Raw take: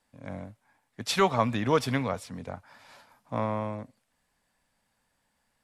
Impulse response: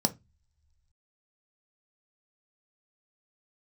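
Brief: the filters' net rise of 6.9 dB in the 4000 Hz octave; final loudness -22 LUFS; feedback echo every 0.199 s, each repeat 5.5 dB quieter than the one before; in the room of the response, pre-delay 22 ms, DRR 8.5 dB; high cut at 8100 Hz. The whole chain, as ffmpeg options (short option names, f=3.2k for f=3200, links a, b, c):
-filter_complex "[0:a]lowpass=8.1k,equalizer=f=4k:t=o:g=8.5,aecho=1:1:199|398|597|796|995|1194|1393:0.531|0.281|0.149|0.079|0.0419|0.0222|0.0118,asplit=2[a][b];[1:a]atrim=start_sample=2205,adelay=22[c];[b][c]afir=irnorm=-1:irlink=0,volume=-16dB[d];[a][d]amix=inputs=2:normalize=0,volume=4dB"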